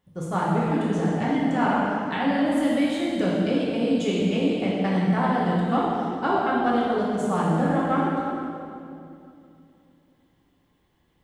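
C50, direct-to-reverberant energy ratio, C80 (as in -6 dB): -2.0 dB, -7.0 dB, -0.5 dB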